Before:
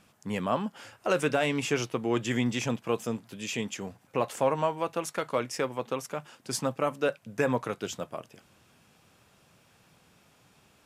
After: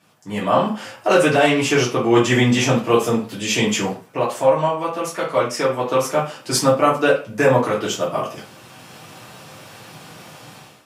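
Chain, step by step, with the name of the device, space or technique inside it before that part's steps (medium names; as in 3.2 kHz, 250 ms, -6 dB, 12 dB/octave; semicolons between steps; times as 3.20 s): far laptop microphone (reverberation RT60 0.35 s, pre-delay 3 ms, DRR -7 dB; high-pass 140 Hz 12 dB/octave; level rider gain up to 16.5 dB); trim -2 dB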